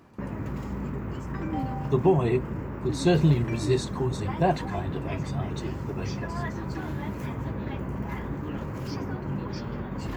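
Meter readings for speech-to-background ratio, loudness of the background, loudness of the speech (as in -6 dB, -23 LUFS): 6.0 dB, -33.5 LUFS, -27.5 LUFS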